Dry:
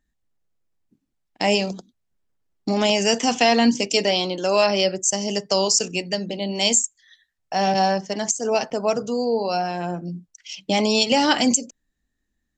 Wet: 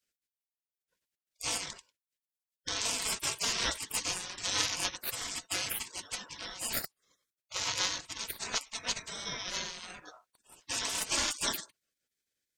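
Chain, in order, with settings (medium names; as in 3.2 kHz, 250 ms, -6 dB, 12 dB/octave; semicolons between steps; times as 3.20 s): Chebyshev shaper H 2 -12 dB, 6 -31 dB, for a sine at -3.5 dBFS; ring modulator 1 kHz; spectral gate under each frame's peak -25 dB weak; trim +6.5 dB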